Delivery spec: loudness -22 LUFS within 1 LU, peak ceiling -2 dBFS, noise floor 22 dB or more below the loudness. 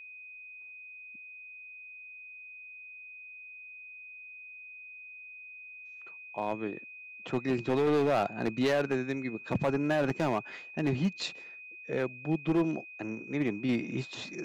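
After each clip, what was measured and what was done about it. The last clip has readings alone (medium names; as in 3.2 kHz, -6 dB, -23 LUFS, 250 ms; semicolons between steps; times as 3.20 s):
clipped samples 1.5%; clipping level -22.0 dBFS; steady tone 2.5 kHz; tone level -45 dBFS; loudness -31.5 LUFS; peak level -22.0 dBFS; loudness target -22.0 LUFS
-> clip repair -22 dBFS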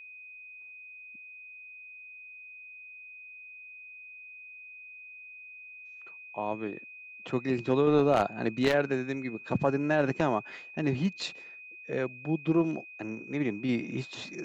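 clipped samples 0.0%; steady tone 2.5 kHz; tone level -45 dBFS
-> band-stop 2.5 kHz, Q 30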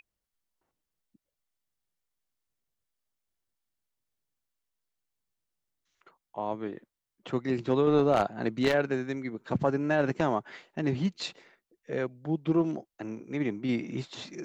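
steady tone not found; loudness -30.0 LUFS; peak level -12.5 dBFS; loudness target -22.0 LUFS
-> trim +8 dB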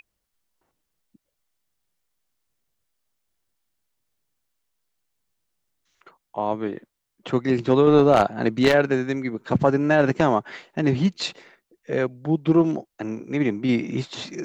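loudness -22.0 LUFS; peak level -4.5 dBFS; noise floor -80 dBFS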